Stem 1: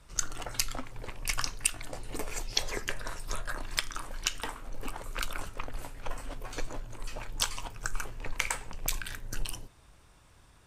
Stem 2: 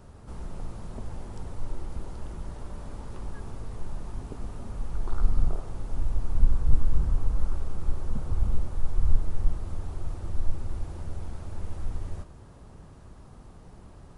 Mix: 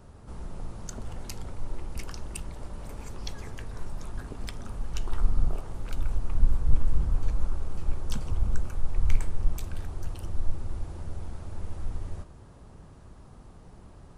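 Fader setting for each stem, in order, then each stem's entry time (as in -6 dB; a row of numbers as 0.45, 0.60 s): -13.0, -1.0 dB; 0.70, 0.00 s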